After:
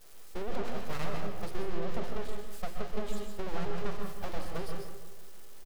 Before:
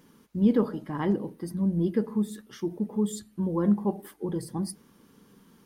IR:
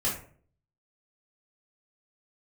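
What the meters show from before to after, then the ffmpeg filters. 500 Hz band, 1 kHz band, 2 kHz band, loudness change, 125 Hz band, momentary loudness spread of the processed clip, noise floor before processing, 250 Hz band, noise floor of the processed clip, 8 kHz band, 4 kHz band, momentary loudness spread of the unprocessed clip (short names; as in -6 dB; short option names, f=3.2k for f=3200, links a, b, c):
-6.5 dB, -1.0 dB, +3.0 dB, -11.0 dB, -10.5 dB, 9 LU, -60 dBFS, -16.5 dB, -43 dBFS, -7.5 dB, +1.5 dB, 11 LU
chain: -filter_complex "[0:a]aeval=exprs='val(0)+0.5*0.0355*sgn(val(0))':c=same,agate=range=-33dB:threshold=-22dB:ratio=3:detection=peak,acrossover=split=5400[a][b];[b]acompressor=threshold=-58dB:ratio=4:attack=1:release=60[c];[a][c]amix=inputs=2:normalize=0,lowshelf=f=160:g=-5,alimiter=limit=-22dB:level=0:latency=1,acompressor=threshold=-40dB:ratio=10,aeval=exprs='abs(val(0))':c=same,asplit=2[d][e];[e]adelay=162,lowpass=f=2k:p=1,volume=-9dB,asplit=2[f][g];[g]adelay=162,lowpass=f=2k:p=1,volume=0.48,asplit=2[h][i];[i]adelay=162,lowpass=f=2k:p=1,volume=0.48,asplit=2[j][k];[k]adelay=162,lowpass=f=2k:p=1,volume=0.48,asplit=2[l][m];[m]adelay=162,lowpass=f=2k:p=1,volume=0.48[n];[d][f][h][j][l][n]amix=inputs=6:normalize=0,asplit=2[o][p];[1:a]atrim=start_sample=2205,adelay=124[q];[p][q]afir=irnorm=-1:irlink=0,volume=-12dB[r];[o][r]amix=inputs=2:normalize=0,volume=9.5dB"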